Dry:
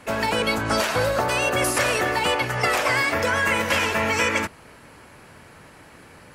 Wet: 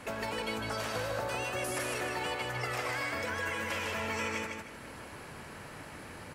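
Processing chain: compression 3:1, threshold -38 dBFS, peak gain reduction 15 dB; on a send: feedback delay 154 ms, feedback 31%, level -3.5 dB; on the sum: trim -1 dB

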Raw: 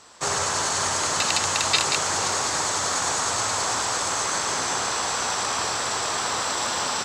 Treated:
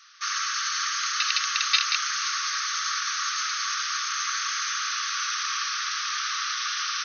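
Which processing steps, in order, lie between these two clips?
brick-wall FIR band-pass 1.1–6.5 kHz

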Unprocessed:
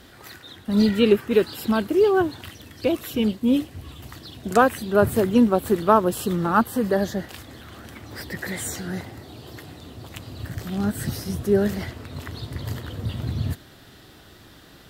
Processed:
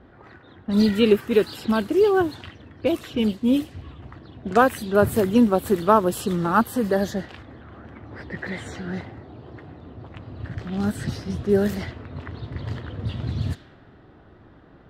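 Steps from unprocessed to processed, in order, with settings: level-controlled noise filter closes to 1.1 kHz, open at -18.5 dBFS

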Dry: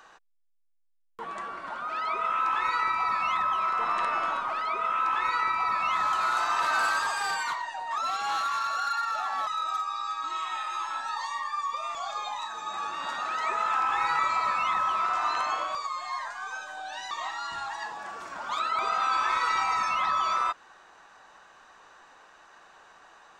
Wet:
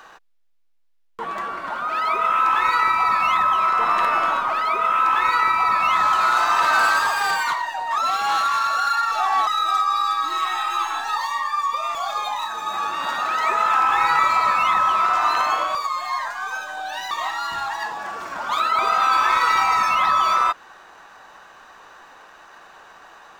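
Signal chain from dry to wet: median filter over 5 samples; 9.11–11.17 s: comb 2.6 ms, depth 82%; trim +8.5 dB

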